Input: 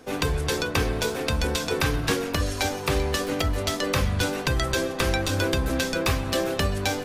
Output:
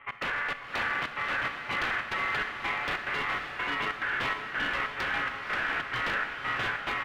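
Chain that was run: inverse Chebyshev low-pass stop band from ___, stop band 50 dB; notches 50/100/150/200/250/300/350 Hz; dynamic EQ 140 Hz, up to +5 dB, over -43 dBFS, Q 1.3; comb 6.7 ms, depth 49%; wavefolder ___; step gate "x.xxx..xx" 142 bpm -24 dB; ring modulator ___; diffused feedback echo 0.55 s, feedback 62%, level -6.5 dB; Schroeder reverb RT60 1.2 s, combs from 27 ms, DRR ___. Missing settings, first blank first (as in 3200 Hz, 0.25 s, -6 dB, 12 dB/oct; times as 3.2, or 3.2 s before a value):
3600 Hz, -23.5 dBFS, 1600 Hz, 11 dB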